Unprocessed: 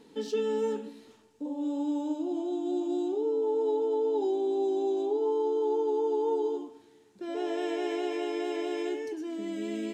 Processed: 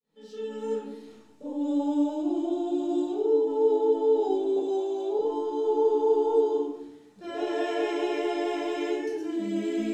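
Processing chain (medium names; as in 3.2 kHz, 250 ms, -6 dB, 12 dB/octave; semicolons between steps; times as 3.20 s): fade-in on the opening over 1.30 s; 4.56–5.19 s: high-pass 400 Hz 24 dB/octave; simulated room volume 710 m³, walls furnished, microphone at 6.1 m; trim -4 dB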